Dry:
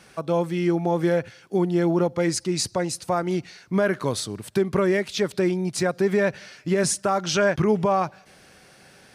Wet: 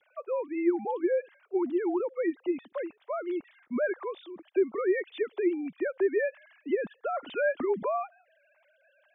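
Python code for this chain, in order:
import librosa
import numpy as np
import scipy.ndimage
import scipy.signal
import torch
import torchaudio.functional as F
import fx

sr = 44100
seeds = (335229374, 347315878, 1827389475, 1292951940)

y = fx.sine_speech(x, sr)
y = y * librosa.db_to_amplitude(-7.0)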